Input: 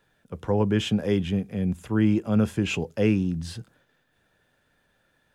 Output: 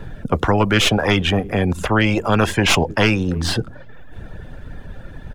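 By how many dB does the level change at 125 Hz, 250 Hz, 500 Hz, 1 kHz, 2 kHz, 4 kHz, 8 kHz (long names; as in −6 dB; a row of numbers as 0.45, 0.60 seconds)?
+6.5, +3.5, +7.5, +16.5, +16.0, +15.5, +15.5 decibels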